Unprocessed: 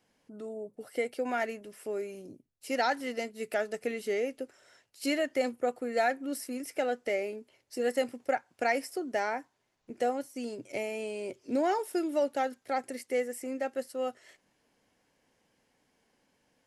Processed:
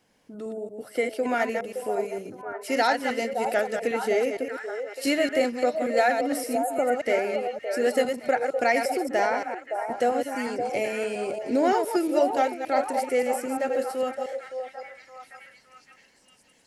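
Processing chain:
delay that plays each chunk backwards 115 ms, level −6 dB
time-frequency box erased 0:06.58–0:06.99, 1,500–6,400 Hz
echo through a band-pass that steps 566 ms, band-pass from 660 Hz, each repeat 0.7 octaves, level −4.5 dB
level +5.5 dB

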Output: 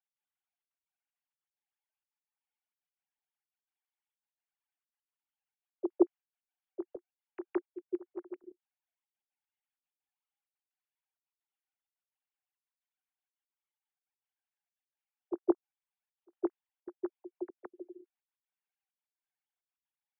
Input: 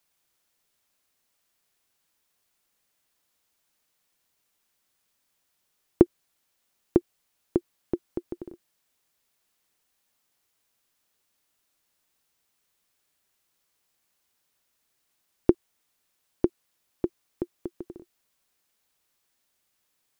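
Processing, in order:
three sine waves on the formant tracks
backwards echo 165 ms −9.5 dB
gate pattern "x.xxxxxx." 192 BPM −24 dB
level −7 dB

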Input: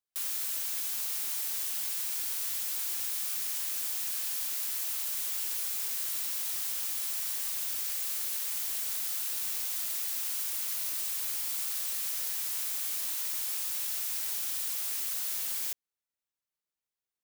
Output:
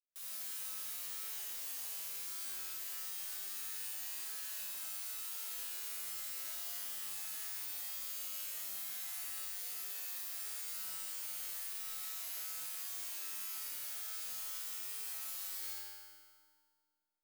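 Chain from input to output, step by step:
tuned comb filter 100 Hz, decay 1.6 s, harmonics all, mix 90%
convolution reverb RT60 2.1 s, pre-delay 15 ms, DRR −4 dB
level +2.5 dB

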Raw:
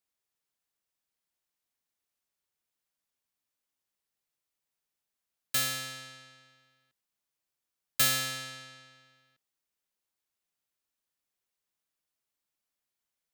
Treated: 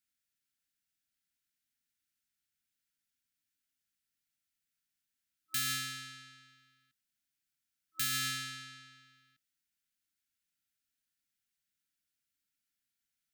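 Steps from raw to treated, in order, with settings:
brick-wall band-stop 320–1,300 Hz
brickwall limiter −25 dBFS, peak gain reduction 10 dB

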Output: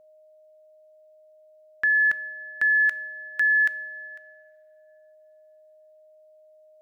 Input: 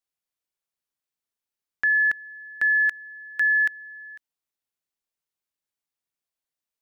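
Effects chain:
steady tone 620 Hz −53 dBFS
coupled-rooms reverb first 0.44 s, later 2.6 s, from −14 dB, DRR 16 dB

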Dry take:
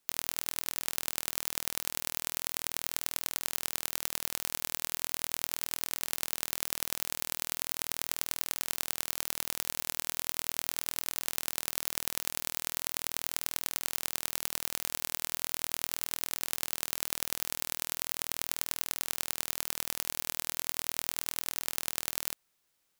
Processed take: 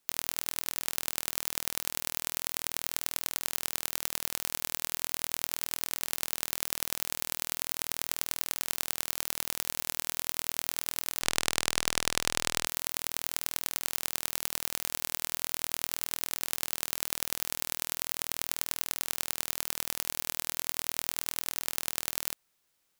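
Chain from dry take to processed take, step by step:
0:11.21–0:12.66: windowed peak hold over 3 samples
level +1 dB

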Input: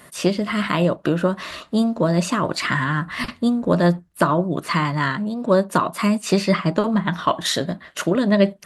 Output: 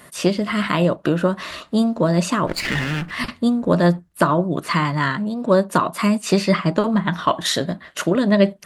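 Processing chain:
0:02.47–0:03.11: lower of the sound and its delayed copy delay 0.43 ms
level +1 dB

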